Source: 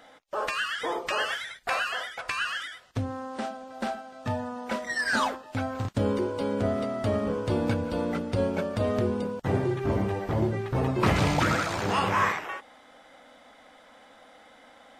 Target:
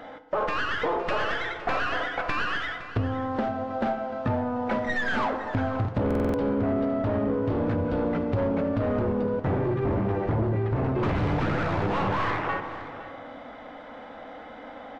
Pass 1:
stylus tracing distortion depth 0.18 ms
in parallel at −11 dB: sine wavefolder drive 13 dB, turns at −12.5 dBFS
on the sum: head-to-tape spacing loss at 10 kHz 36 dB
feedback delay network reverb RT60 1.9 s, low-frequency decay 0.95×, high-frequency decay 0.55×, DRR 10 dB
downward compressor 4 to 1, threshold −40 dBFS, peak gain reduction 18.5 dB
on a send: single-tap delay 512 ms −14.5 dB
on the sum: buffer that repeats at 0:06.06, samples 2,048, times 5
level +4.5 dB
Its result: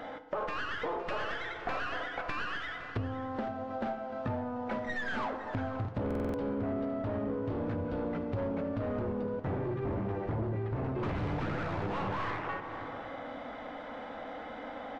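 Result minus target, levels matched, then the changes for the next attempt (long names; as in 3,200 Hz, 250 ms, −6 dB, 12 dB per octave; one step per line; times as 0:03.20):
downward compressor: peak gain reduction +8 dB
change: downward compressor 4 to 1, threshold −29 dBFS, peak gain reduction 10 dB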